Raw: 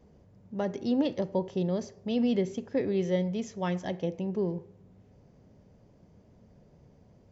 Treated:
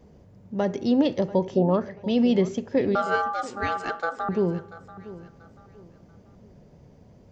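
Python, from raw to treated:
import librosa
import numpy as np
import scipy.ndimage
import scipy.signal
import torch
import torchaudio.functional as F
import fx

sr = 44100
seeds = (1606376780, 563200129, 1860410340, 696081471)

y = fx.lowpass_res(x, sr, hz=fx.line((1.56, 600.0), (2.02, 2700.0)), q=7.5, at=(1.56, 2.02), fade=0.02)
y = fx.ring_mod(y, sr, carrier_hz=1000.0, at=(2.95, 4.29))
y = fx.echo_feedback(y, sr, ms=687, feedback_pct=32, wet_db=-17)
y = F.gain(torch.from_numpy(y), 6.0).numpy()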